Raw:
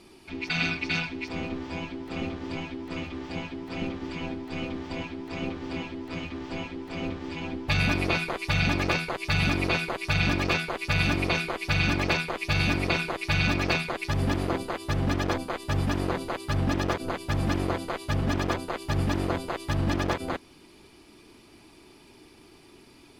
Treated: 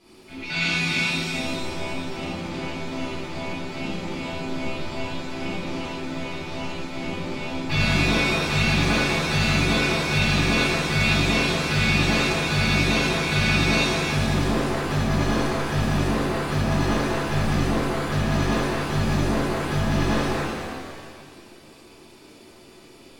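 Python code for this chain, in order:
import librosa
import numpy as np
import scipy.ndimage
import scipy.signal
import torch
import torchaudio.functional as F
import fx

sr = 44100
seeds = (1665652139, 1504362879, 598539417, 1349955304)

y = fx.rev_shimmer(x, sr, seeds[0], rt60_s=1.9, semitones=7, shimmer_db=-8, drr_db=-12.0)
y = y * 10.0 ** (-8.0 / 20.0)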